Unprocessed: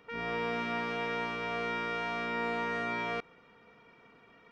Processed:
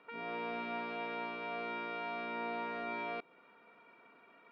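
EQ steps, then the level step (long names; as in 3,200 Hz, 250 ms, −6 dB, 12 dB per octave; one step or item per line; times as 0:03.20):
high-frequency loss of the air 87 metres
loudspeaker in its box 420–3,600 Hz, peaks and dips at 470 Hz −9 dB, 800 Hz −6 dB, 1,200 Hz −5 dB, 1,900 Hz −9 dB, 3,100 Hz −9 dB
dynamic equaliser 1,500 Hz, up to −7 dB, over −55 dBFS, Q 0.85
+4.5 dB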